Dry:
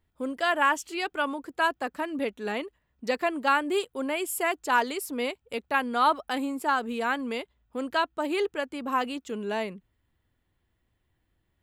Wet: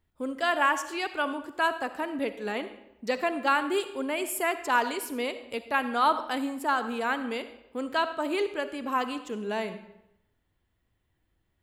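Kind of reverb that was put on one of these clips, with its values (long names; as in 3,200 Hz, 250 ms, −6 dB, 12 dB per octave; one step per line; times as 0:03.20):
comb and all-pass reverb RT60 0.85 s, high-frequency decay 0.8×, pre-delay 20 ms, DRR 10.5 dB
level −1 dB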